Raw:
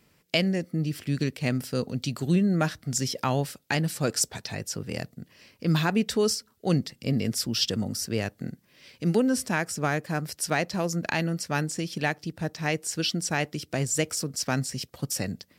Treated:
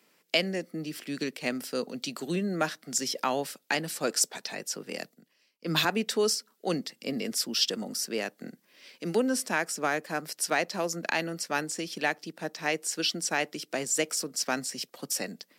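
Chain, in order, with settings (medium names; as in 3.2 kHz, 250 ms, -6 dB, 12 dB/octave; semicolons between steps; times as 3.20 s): Bessel high-pass 320 Hz, order 8; 4.97–5.85 s: three bands expanded up and down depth 100%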